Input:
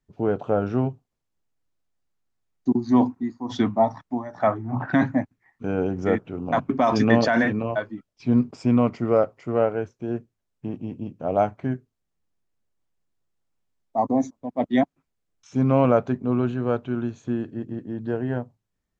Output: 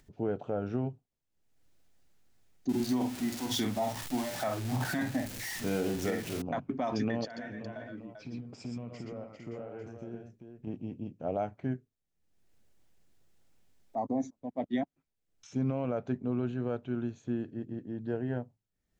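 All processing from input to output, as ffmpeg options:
-filter_complex "[0:a]asettb=1/sr,asplit=3[a][b][c];[a]atrim=end=2.694[d];[b]atrim=start=2.69:end=6.42,asetpts=PTS-STARTPTS,afade=t=in:d=0.004:c=qsin,afade=t=out:st=3.726:d=0.004:c=qsin,aeval=exprs='val(0)+0.5*0.0251*sgn(val(0))':c=same,highshelf=f=2.4k:g=11.5,asplit=2[e][f];[f]adelay=47,volume=-6dB[g];[e][g]amix=inputs=2:normalize=0,atrim=end_sample=164493[h];[c]atrim=start=6.416[i];[d][h]acrossfade=d=0.004:c1=hsin:c2=qsin[j];[j][i]acrossfade=d=0.004:c1=qsin:c2=hsin,asettb=1/sr,asplit=3[k][l][m];[k]atrim=end=7.254[n];[l]atrim=start=7.25:end=10.67,asetpts=PTS-STARTPTS,afade=t=in:d=0.004:c=qsin,afade=t=out:st=3.416:d=0.004:c=qsin,acompressor=threshold=-31dB:ratio=12:attack=3.2:release=140:knee=1:detection=peak,aecho=1:1:51|116|126|394:0.251|0.531|0.422|0.473,atrim=end_sample=150822[o];[m]atrim=start=10.666[p];[n][o]acrossfade=d=0.004:c1=hsin:c2=qsin[q];[q][p]acrossfade=d=0.004:c1=qsin:c2=hsin,alimiter=limit=-14.5dB:level=0:latency=1:release=157,acompressor=mode=upward:threshold=-41dB:ratio=2.5,equalizer=f=1.1k:w=2.5:g=-6,volume=-7dB"

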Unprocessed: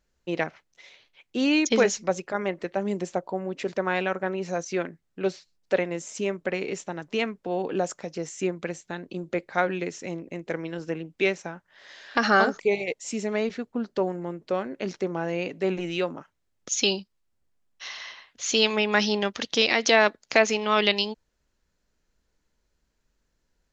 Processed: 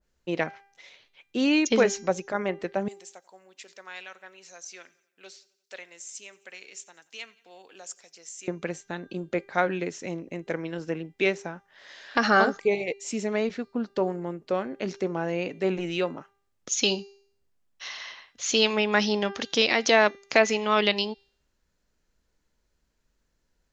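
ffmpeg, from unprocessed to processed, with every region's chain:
-filter_complex "[0:a]asettb=1/sr,asplit=3[a][b][c];[a]atrim=end=2.884[d];[b]atrim=start=2.88:end=8.48,asetpts=PTS-STARTPTS,afade=t=in:d=0.004:c=qsin,afade=t=out:st=5.596:d=0.004:c=qsin,aderivative,aecho=1:1:88|176|264|352:0.0708|0.0396|0.0222|0.0124,atrim=end_sample=246960[e];[c]atrim=start=8.476[f];[d][e]acrossfade=d=0.004:c1=hsin:c2=qsin[g];[g][f]acrossfade=d=0.004:c1=qsin:c2=hsin,bandreject=f=397.5:t=h:w=4,bandreject=f=795:t=h:w=4,bandreject=f=1.1925k:t=h:w=4,bandreject=f=1.59k:t=h:w=4,bandreject=f=1.9875k:t=h:w=4,bandreject=f=2.385k:t=h:w=4,bandreject=f=2.7825k:t=h:w=4,bandreject=f=3.18k:t=h:w=4,bandreject=f=3.5775k:t=h:w=4,bandreject=f=3.975k:t=h:w=4,bandreject=f=4.3725k:t=h:w=4,bandreject=f=4.77k:t=h:w=4,bandreject=f=5.1675k:t=h:w=4,bandreject=f=5.565k:t=h:w=4,bandreject=f=5.9625k:t=h:w=4,bandreject=f=6.36k:t=h:w=4,bandreject=f=6.7575k:t=h:w=4,adynamicequalizer=threshold=0.0178:dfrequency=1800:dqfactor=0.7:tfrequency=1800:tqfactor=0.7:attack=5:release=100:ratio=0.375:range=1.5:mode=cutabove:tftype=highshelf"

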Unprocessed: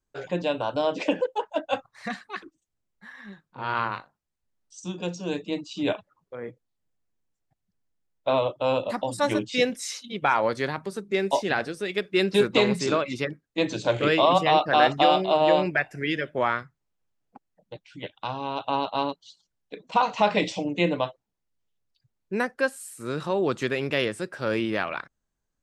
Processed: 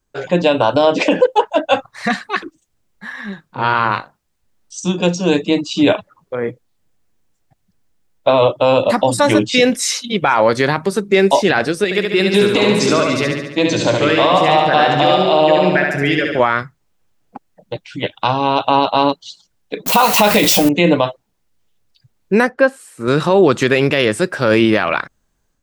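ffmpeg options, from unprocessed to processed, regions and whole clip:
-filter_complex "[0:a]asettb=1/sr,asplit=3[a][b][c];[a]atrim=end=11.844[d];[b]atrim=start=11.84:end=16.4,asetpts=PTS-STARTPTS,afade=t=in:d=0.004:c=qsin,afade=t=out:st=4.556:d=0.004:c=qsin,highpass=88,acompressor=threshold=-32dB:ratio=2:attack=3.2:release=140:knee=1:detection=peak,aecho=1:1:71|142|213|284|355|426|497|568|639:0.631|0.379|0.227|0.136|0.0818|0.0491|0.0294|0.0177|0.0106,atrim=end_sample=201096[e];[c]atrim=start=16.396[f];[d][e]acrossfade=d=0.004:c1=hsin:c2=qsin[g];[g][f]acrossfade=d=0.004:c1=qsin:c2=hsin,asettb=1/sr,asplit=3[h][i][j];[h]atrim=end=19.864[k];[i]atrim=start=19.86:end=20.69,asetpts=PTS-STARTPTS,afade=t=in:d=0.004:c=qsin,afade=t=out:st=0.826:d=0.004:c=qsin,aeval=exprs='val(0)+0.5*0.0224*sgn(val(0))':c=same,aemphasis=mode=production:type=50fm,asplit=2[l][m];[m]adelay=14,volume=-12dB[n];[l][n]amix=inputs=2:normalize=0,atrim=end_sample=36603[o];[j]atrim=start=20.686[p];[k][o]acrossfade=d=0.004:c1=hsin:c2=qsin[q];[q][p]acrossfade=d=0.004:c1=qsin:c2=hsin,asettb=1/sr,asplit=3[r][s][t];[r]atrim=end=22.494[u];[s]atrim=start=22.49:end=23.08,asetpts=PTS-STARTPTS,afade=t=in:d=0.004:c=qsin,afade=t=out:st=0.586:d=0.004:c=qsin,lowpass=f=1.3k:p=1,lowshelf=f=70:g=-11[v];[t]atrim=start=23.076[w];[u][v]acrossfade=d=0.004:c1=hsin:c2=qsin[x];[x][w]acrossfade=d=0.004:c1=qsin:c2=hsin,dynaudnorm=f=250:g=3:m=5dB,alimiter=level_in=11.5dB:limit=-1dB:release=50:level=0:latency=1,volume=-1dB"

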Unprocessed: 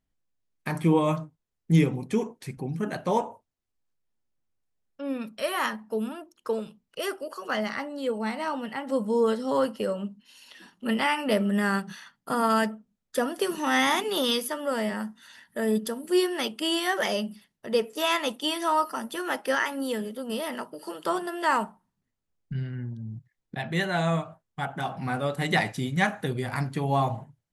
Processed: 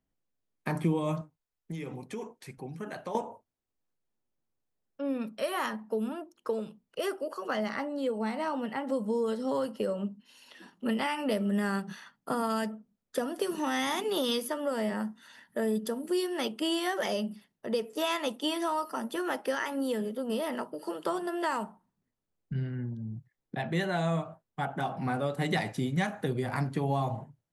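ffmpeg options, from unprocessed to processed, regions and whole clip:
-filter_complex "[0:a]asettb=1/sr,asplit=3[a][b][c];[a]atrim=end=1.214[d];[b]atrim=start=1.21:end=3.15,asetpts=PTS-STARTPTS,afade=t=in:d=0.004:c=qsin,afade=t=out:st=1.936:d=0.004:c=qsin,equalizer=f=210:w=0.36:g=-10.5,acompressor=threshold=-33dB:ratio=12:attack=3.2:release=140:knee=1:detection=peak[e];[c]atrim=start=3.146[f];[d][e]acrossfade=d=0.004:c1=hsin:c2=qsin[g];[g][f]acrossfade=d=0.004:c1=qsin:c2=hsin,equalizer=f=410:w=0.33:g=7.5,acrossover=split=140|3000[h][i][j];[i]acompressor=threshold=-22dB:ratio=6[k];[h][k][j]amix=inputs=3:normalize=0,volume=-5.5dB"

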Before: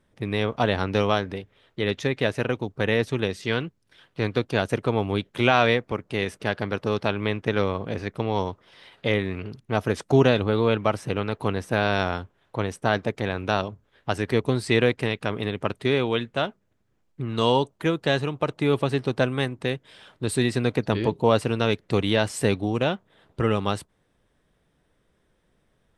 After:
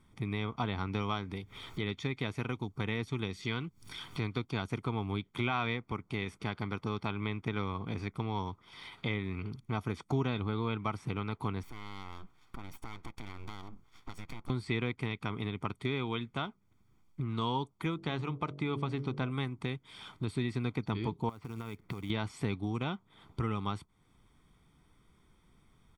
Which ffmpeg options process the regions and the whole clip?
-filter_complex "[0:a]asettb=1/sr,asplit=3[a][b][c];[a]atrim=end=1.024[d];[b]atrim=start=1.02:end=4.85,asetpts=PTS-STARTPTS,afade=t=in:d=0.004:c=qsin,afade=t=out:st=3.826:d=0.004:c=qsin,acompressor=mode=upward:threshold=-35dB:ratio=2.5:attack=3.2:release=140:knee=2.83:detection=peak,bass=f=250:g=0,treble=f=4k:g=5[e];[c]atrim=start=4.846[f];[d][e]acrossfade=d=0.004:c1=hsin:c2=qsin[g];[g][f]acrossfade=d=0.004:c1=qsin:c2=hsin,asettb=1/sr,asplit=3[h][i][j];[h]atrim=end=11.634[k];[i]atrim=start=11.63:end=14.5,asetpts=PTS-STARTPTS,afade=t=in:d=0.004:c=qsin,afade=t=out:st=2.866:d=0.004:c=qsin,acompressor=threshold=-40dB:ratio=4:attack=3.2:release=140:knee=1:detection=peak,aeval=exprs='abs(val(0))':c=same[l];[j]atrim=start=14.496[m];[k][l]acrossfade=d=0.004:c1=hsin:c2=qsin[n];[n][m]acrossfade=d=0.004:c1=qsin:c2=hsin,asettb=1/sr,asplit=3[o][p][q];[o]atrim=end=17.944[r];[p]atrim=start=17.94:end=19.31,asetpts=PTS-STARTPTS,afade=t=in:d=0.004:c=qsin,afade=t=out:st=1.366:d=0.004:c=qsin,lowpass=7.9k,highshelf=f=5.5k:g=-5.5,bandreject=f=47.13:t=h:w=4,bandreject=f=94.26:t=h:w=4,bandreject=f=141.39:t=h:w=4,bandreject=f=188.52:t=h:w=4,bandreject=f=235.65:t=h:w=4,bandreject=f=282.78:t=h:w=4,bandreject=f=329.91:t=h:w=4,bandreject=f=377.04:t=h:w=4,bandreject=f=424.17:t=h:w=4,bandreject=f=471.3:t=h:w=4,bandreject=f=518.43:t=h:w=4,bandreject=f=565.56:t=h:w=4,bandreject=f=612.69:t=h:w=4,bandreject=f=659.82:t=h:w=4[s];[q]atrim=start=19.306[t];[r][s]acrossfade=d=0.004:c1=hsin:c2=qsin[u];[u][t]acrossfade=d=0.004:c1=qsin:c2=hsin,asettb=1/sr,asplit=3[v][w][x];[v]atrim=end=21.294[y];[w]atrim=start=21.29:end=22.1,asetpts=PTS-STARTPTS,afade=t=in:d=0.004:c=qsin,afade=t=out:st=0.806:d=0.004:c=qsin,lowpass=2.4k,acompressor=threshold=-31dB:ratio=16:attack=3.2:release=140:knee=1:detection=peak,acrusher=bits=5:mode=log:mix=0:aa=0.000001[z];[x]atrim=start=22.096[aa];[y][z]acrossfade=d=0.004:c1=hsin:c2=qsin[ab];[ab][aa]acrossfade=d=0.004:c1=qsin:c2=hsin,acrossover=split=4200[ac][ad];[ad]acompressor=threshold=-49dB:ratio=4:attack=1:release=60[ae];[ac][ae]amix=inputs=2:normalize=0,aecho=1:1:0.9:0.72,acompressor=threshold=-40dB:ratio=2"

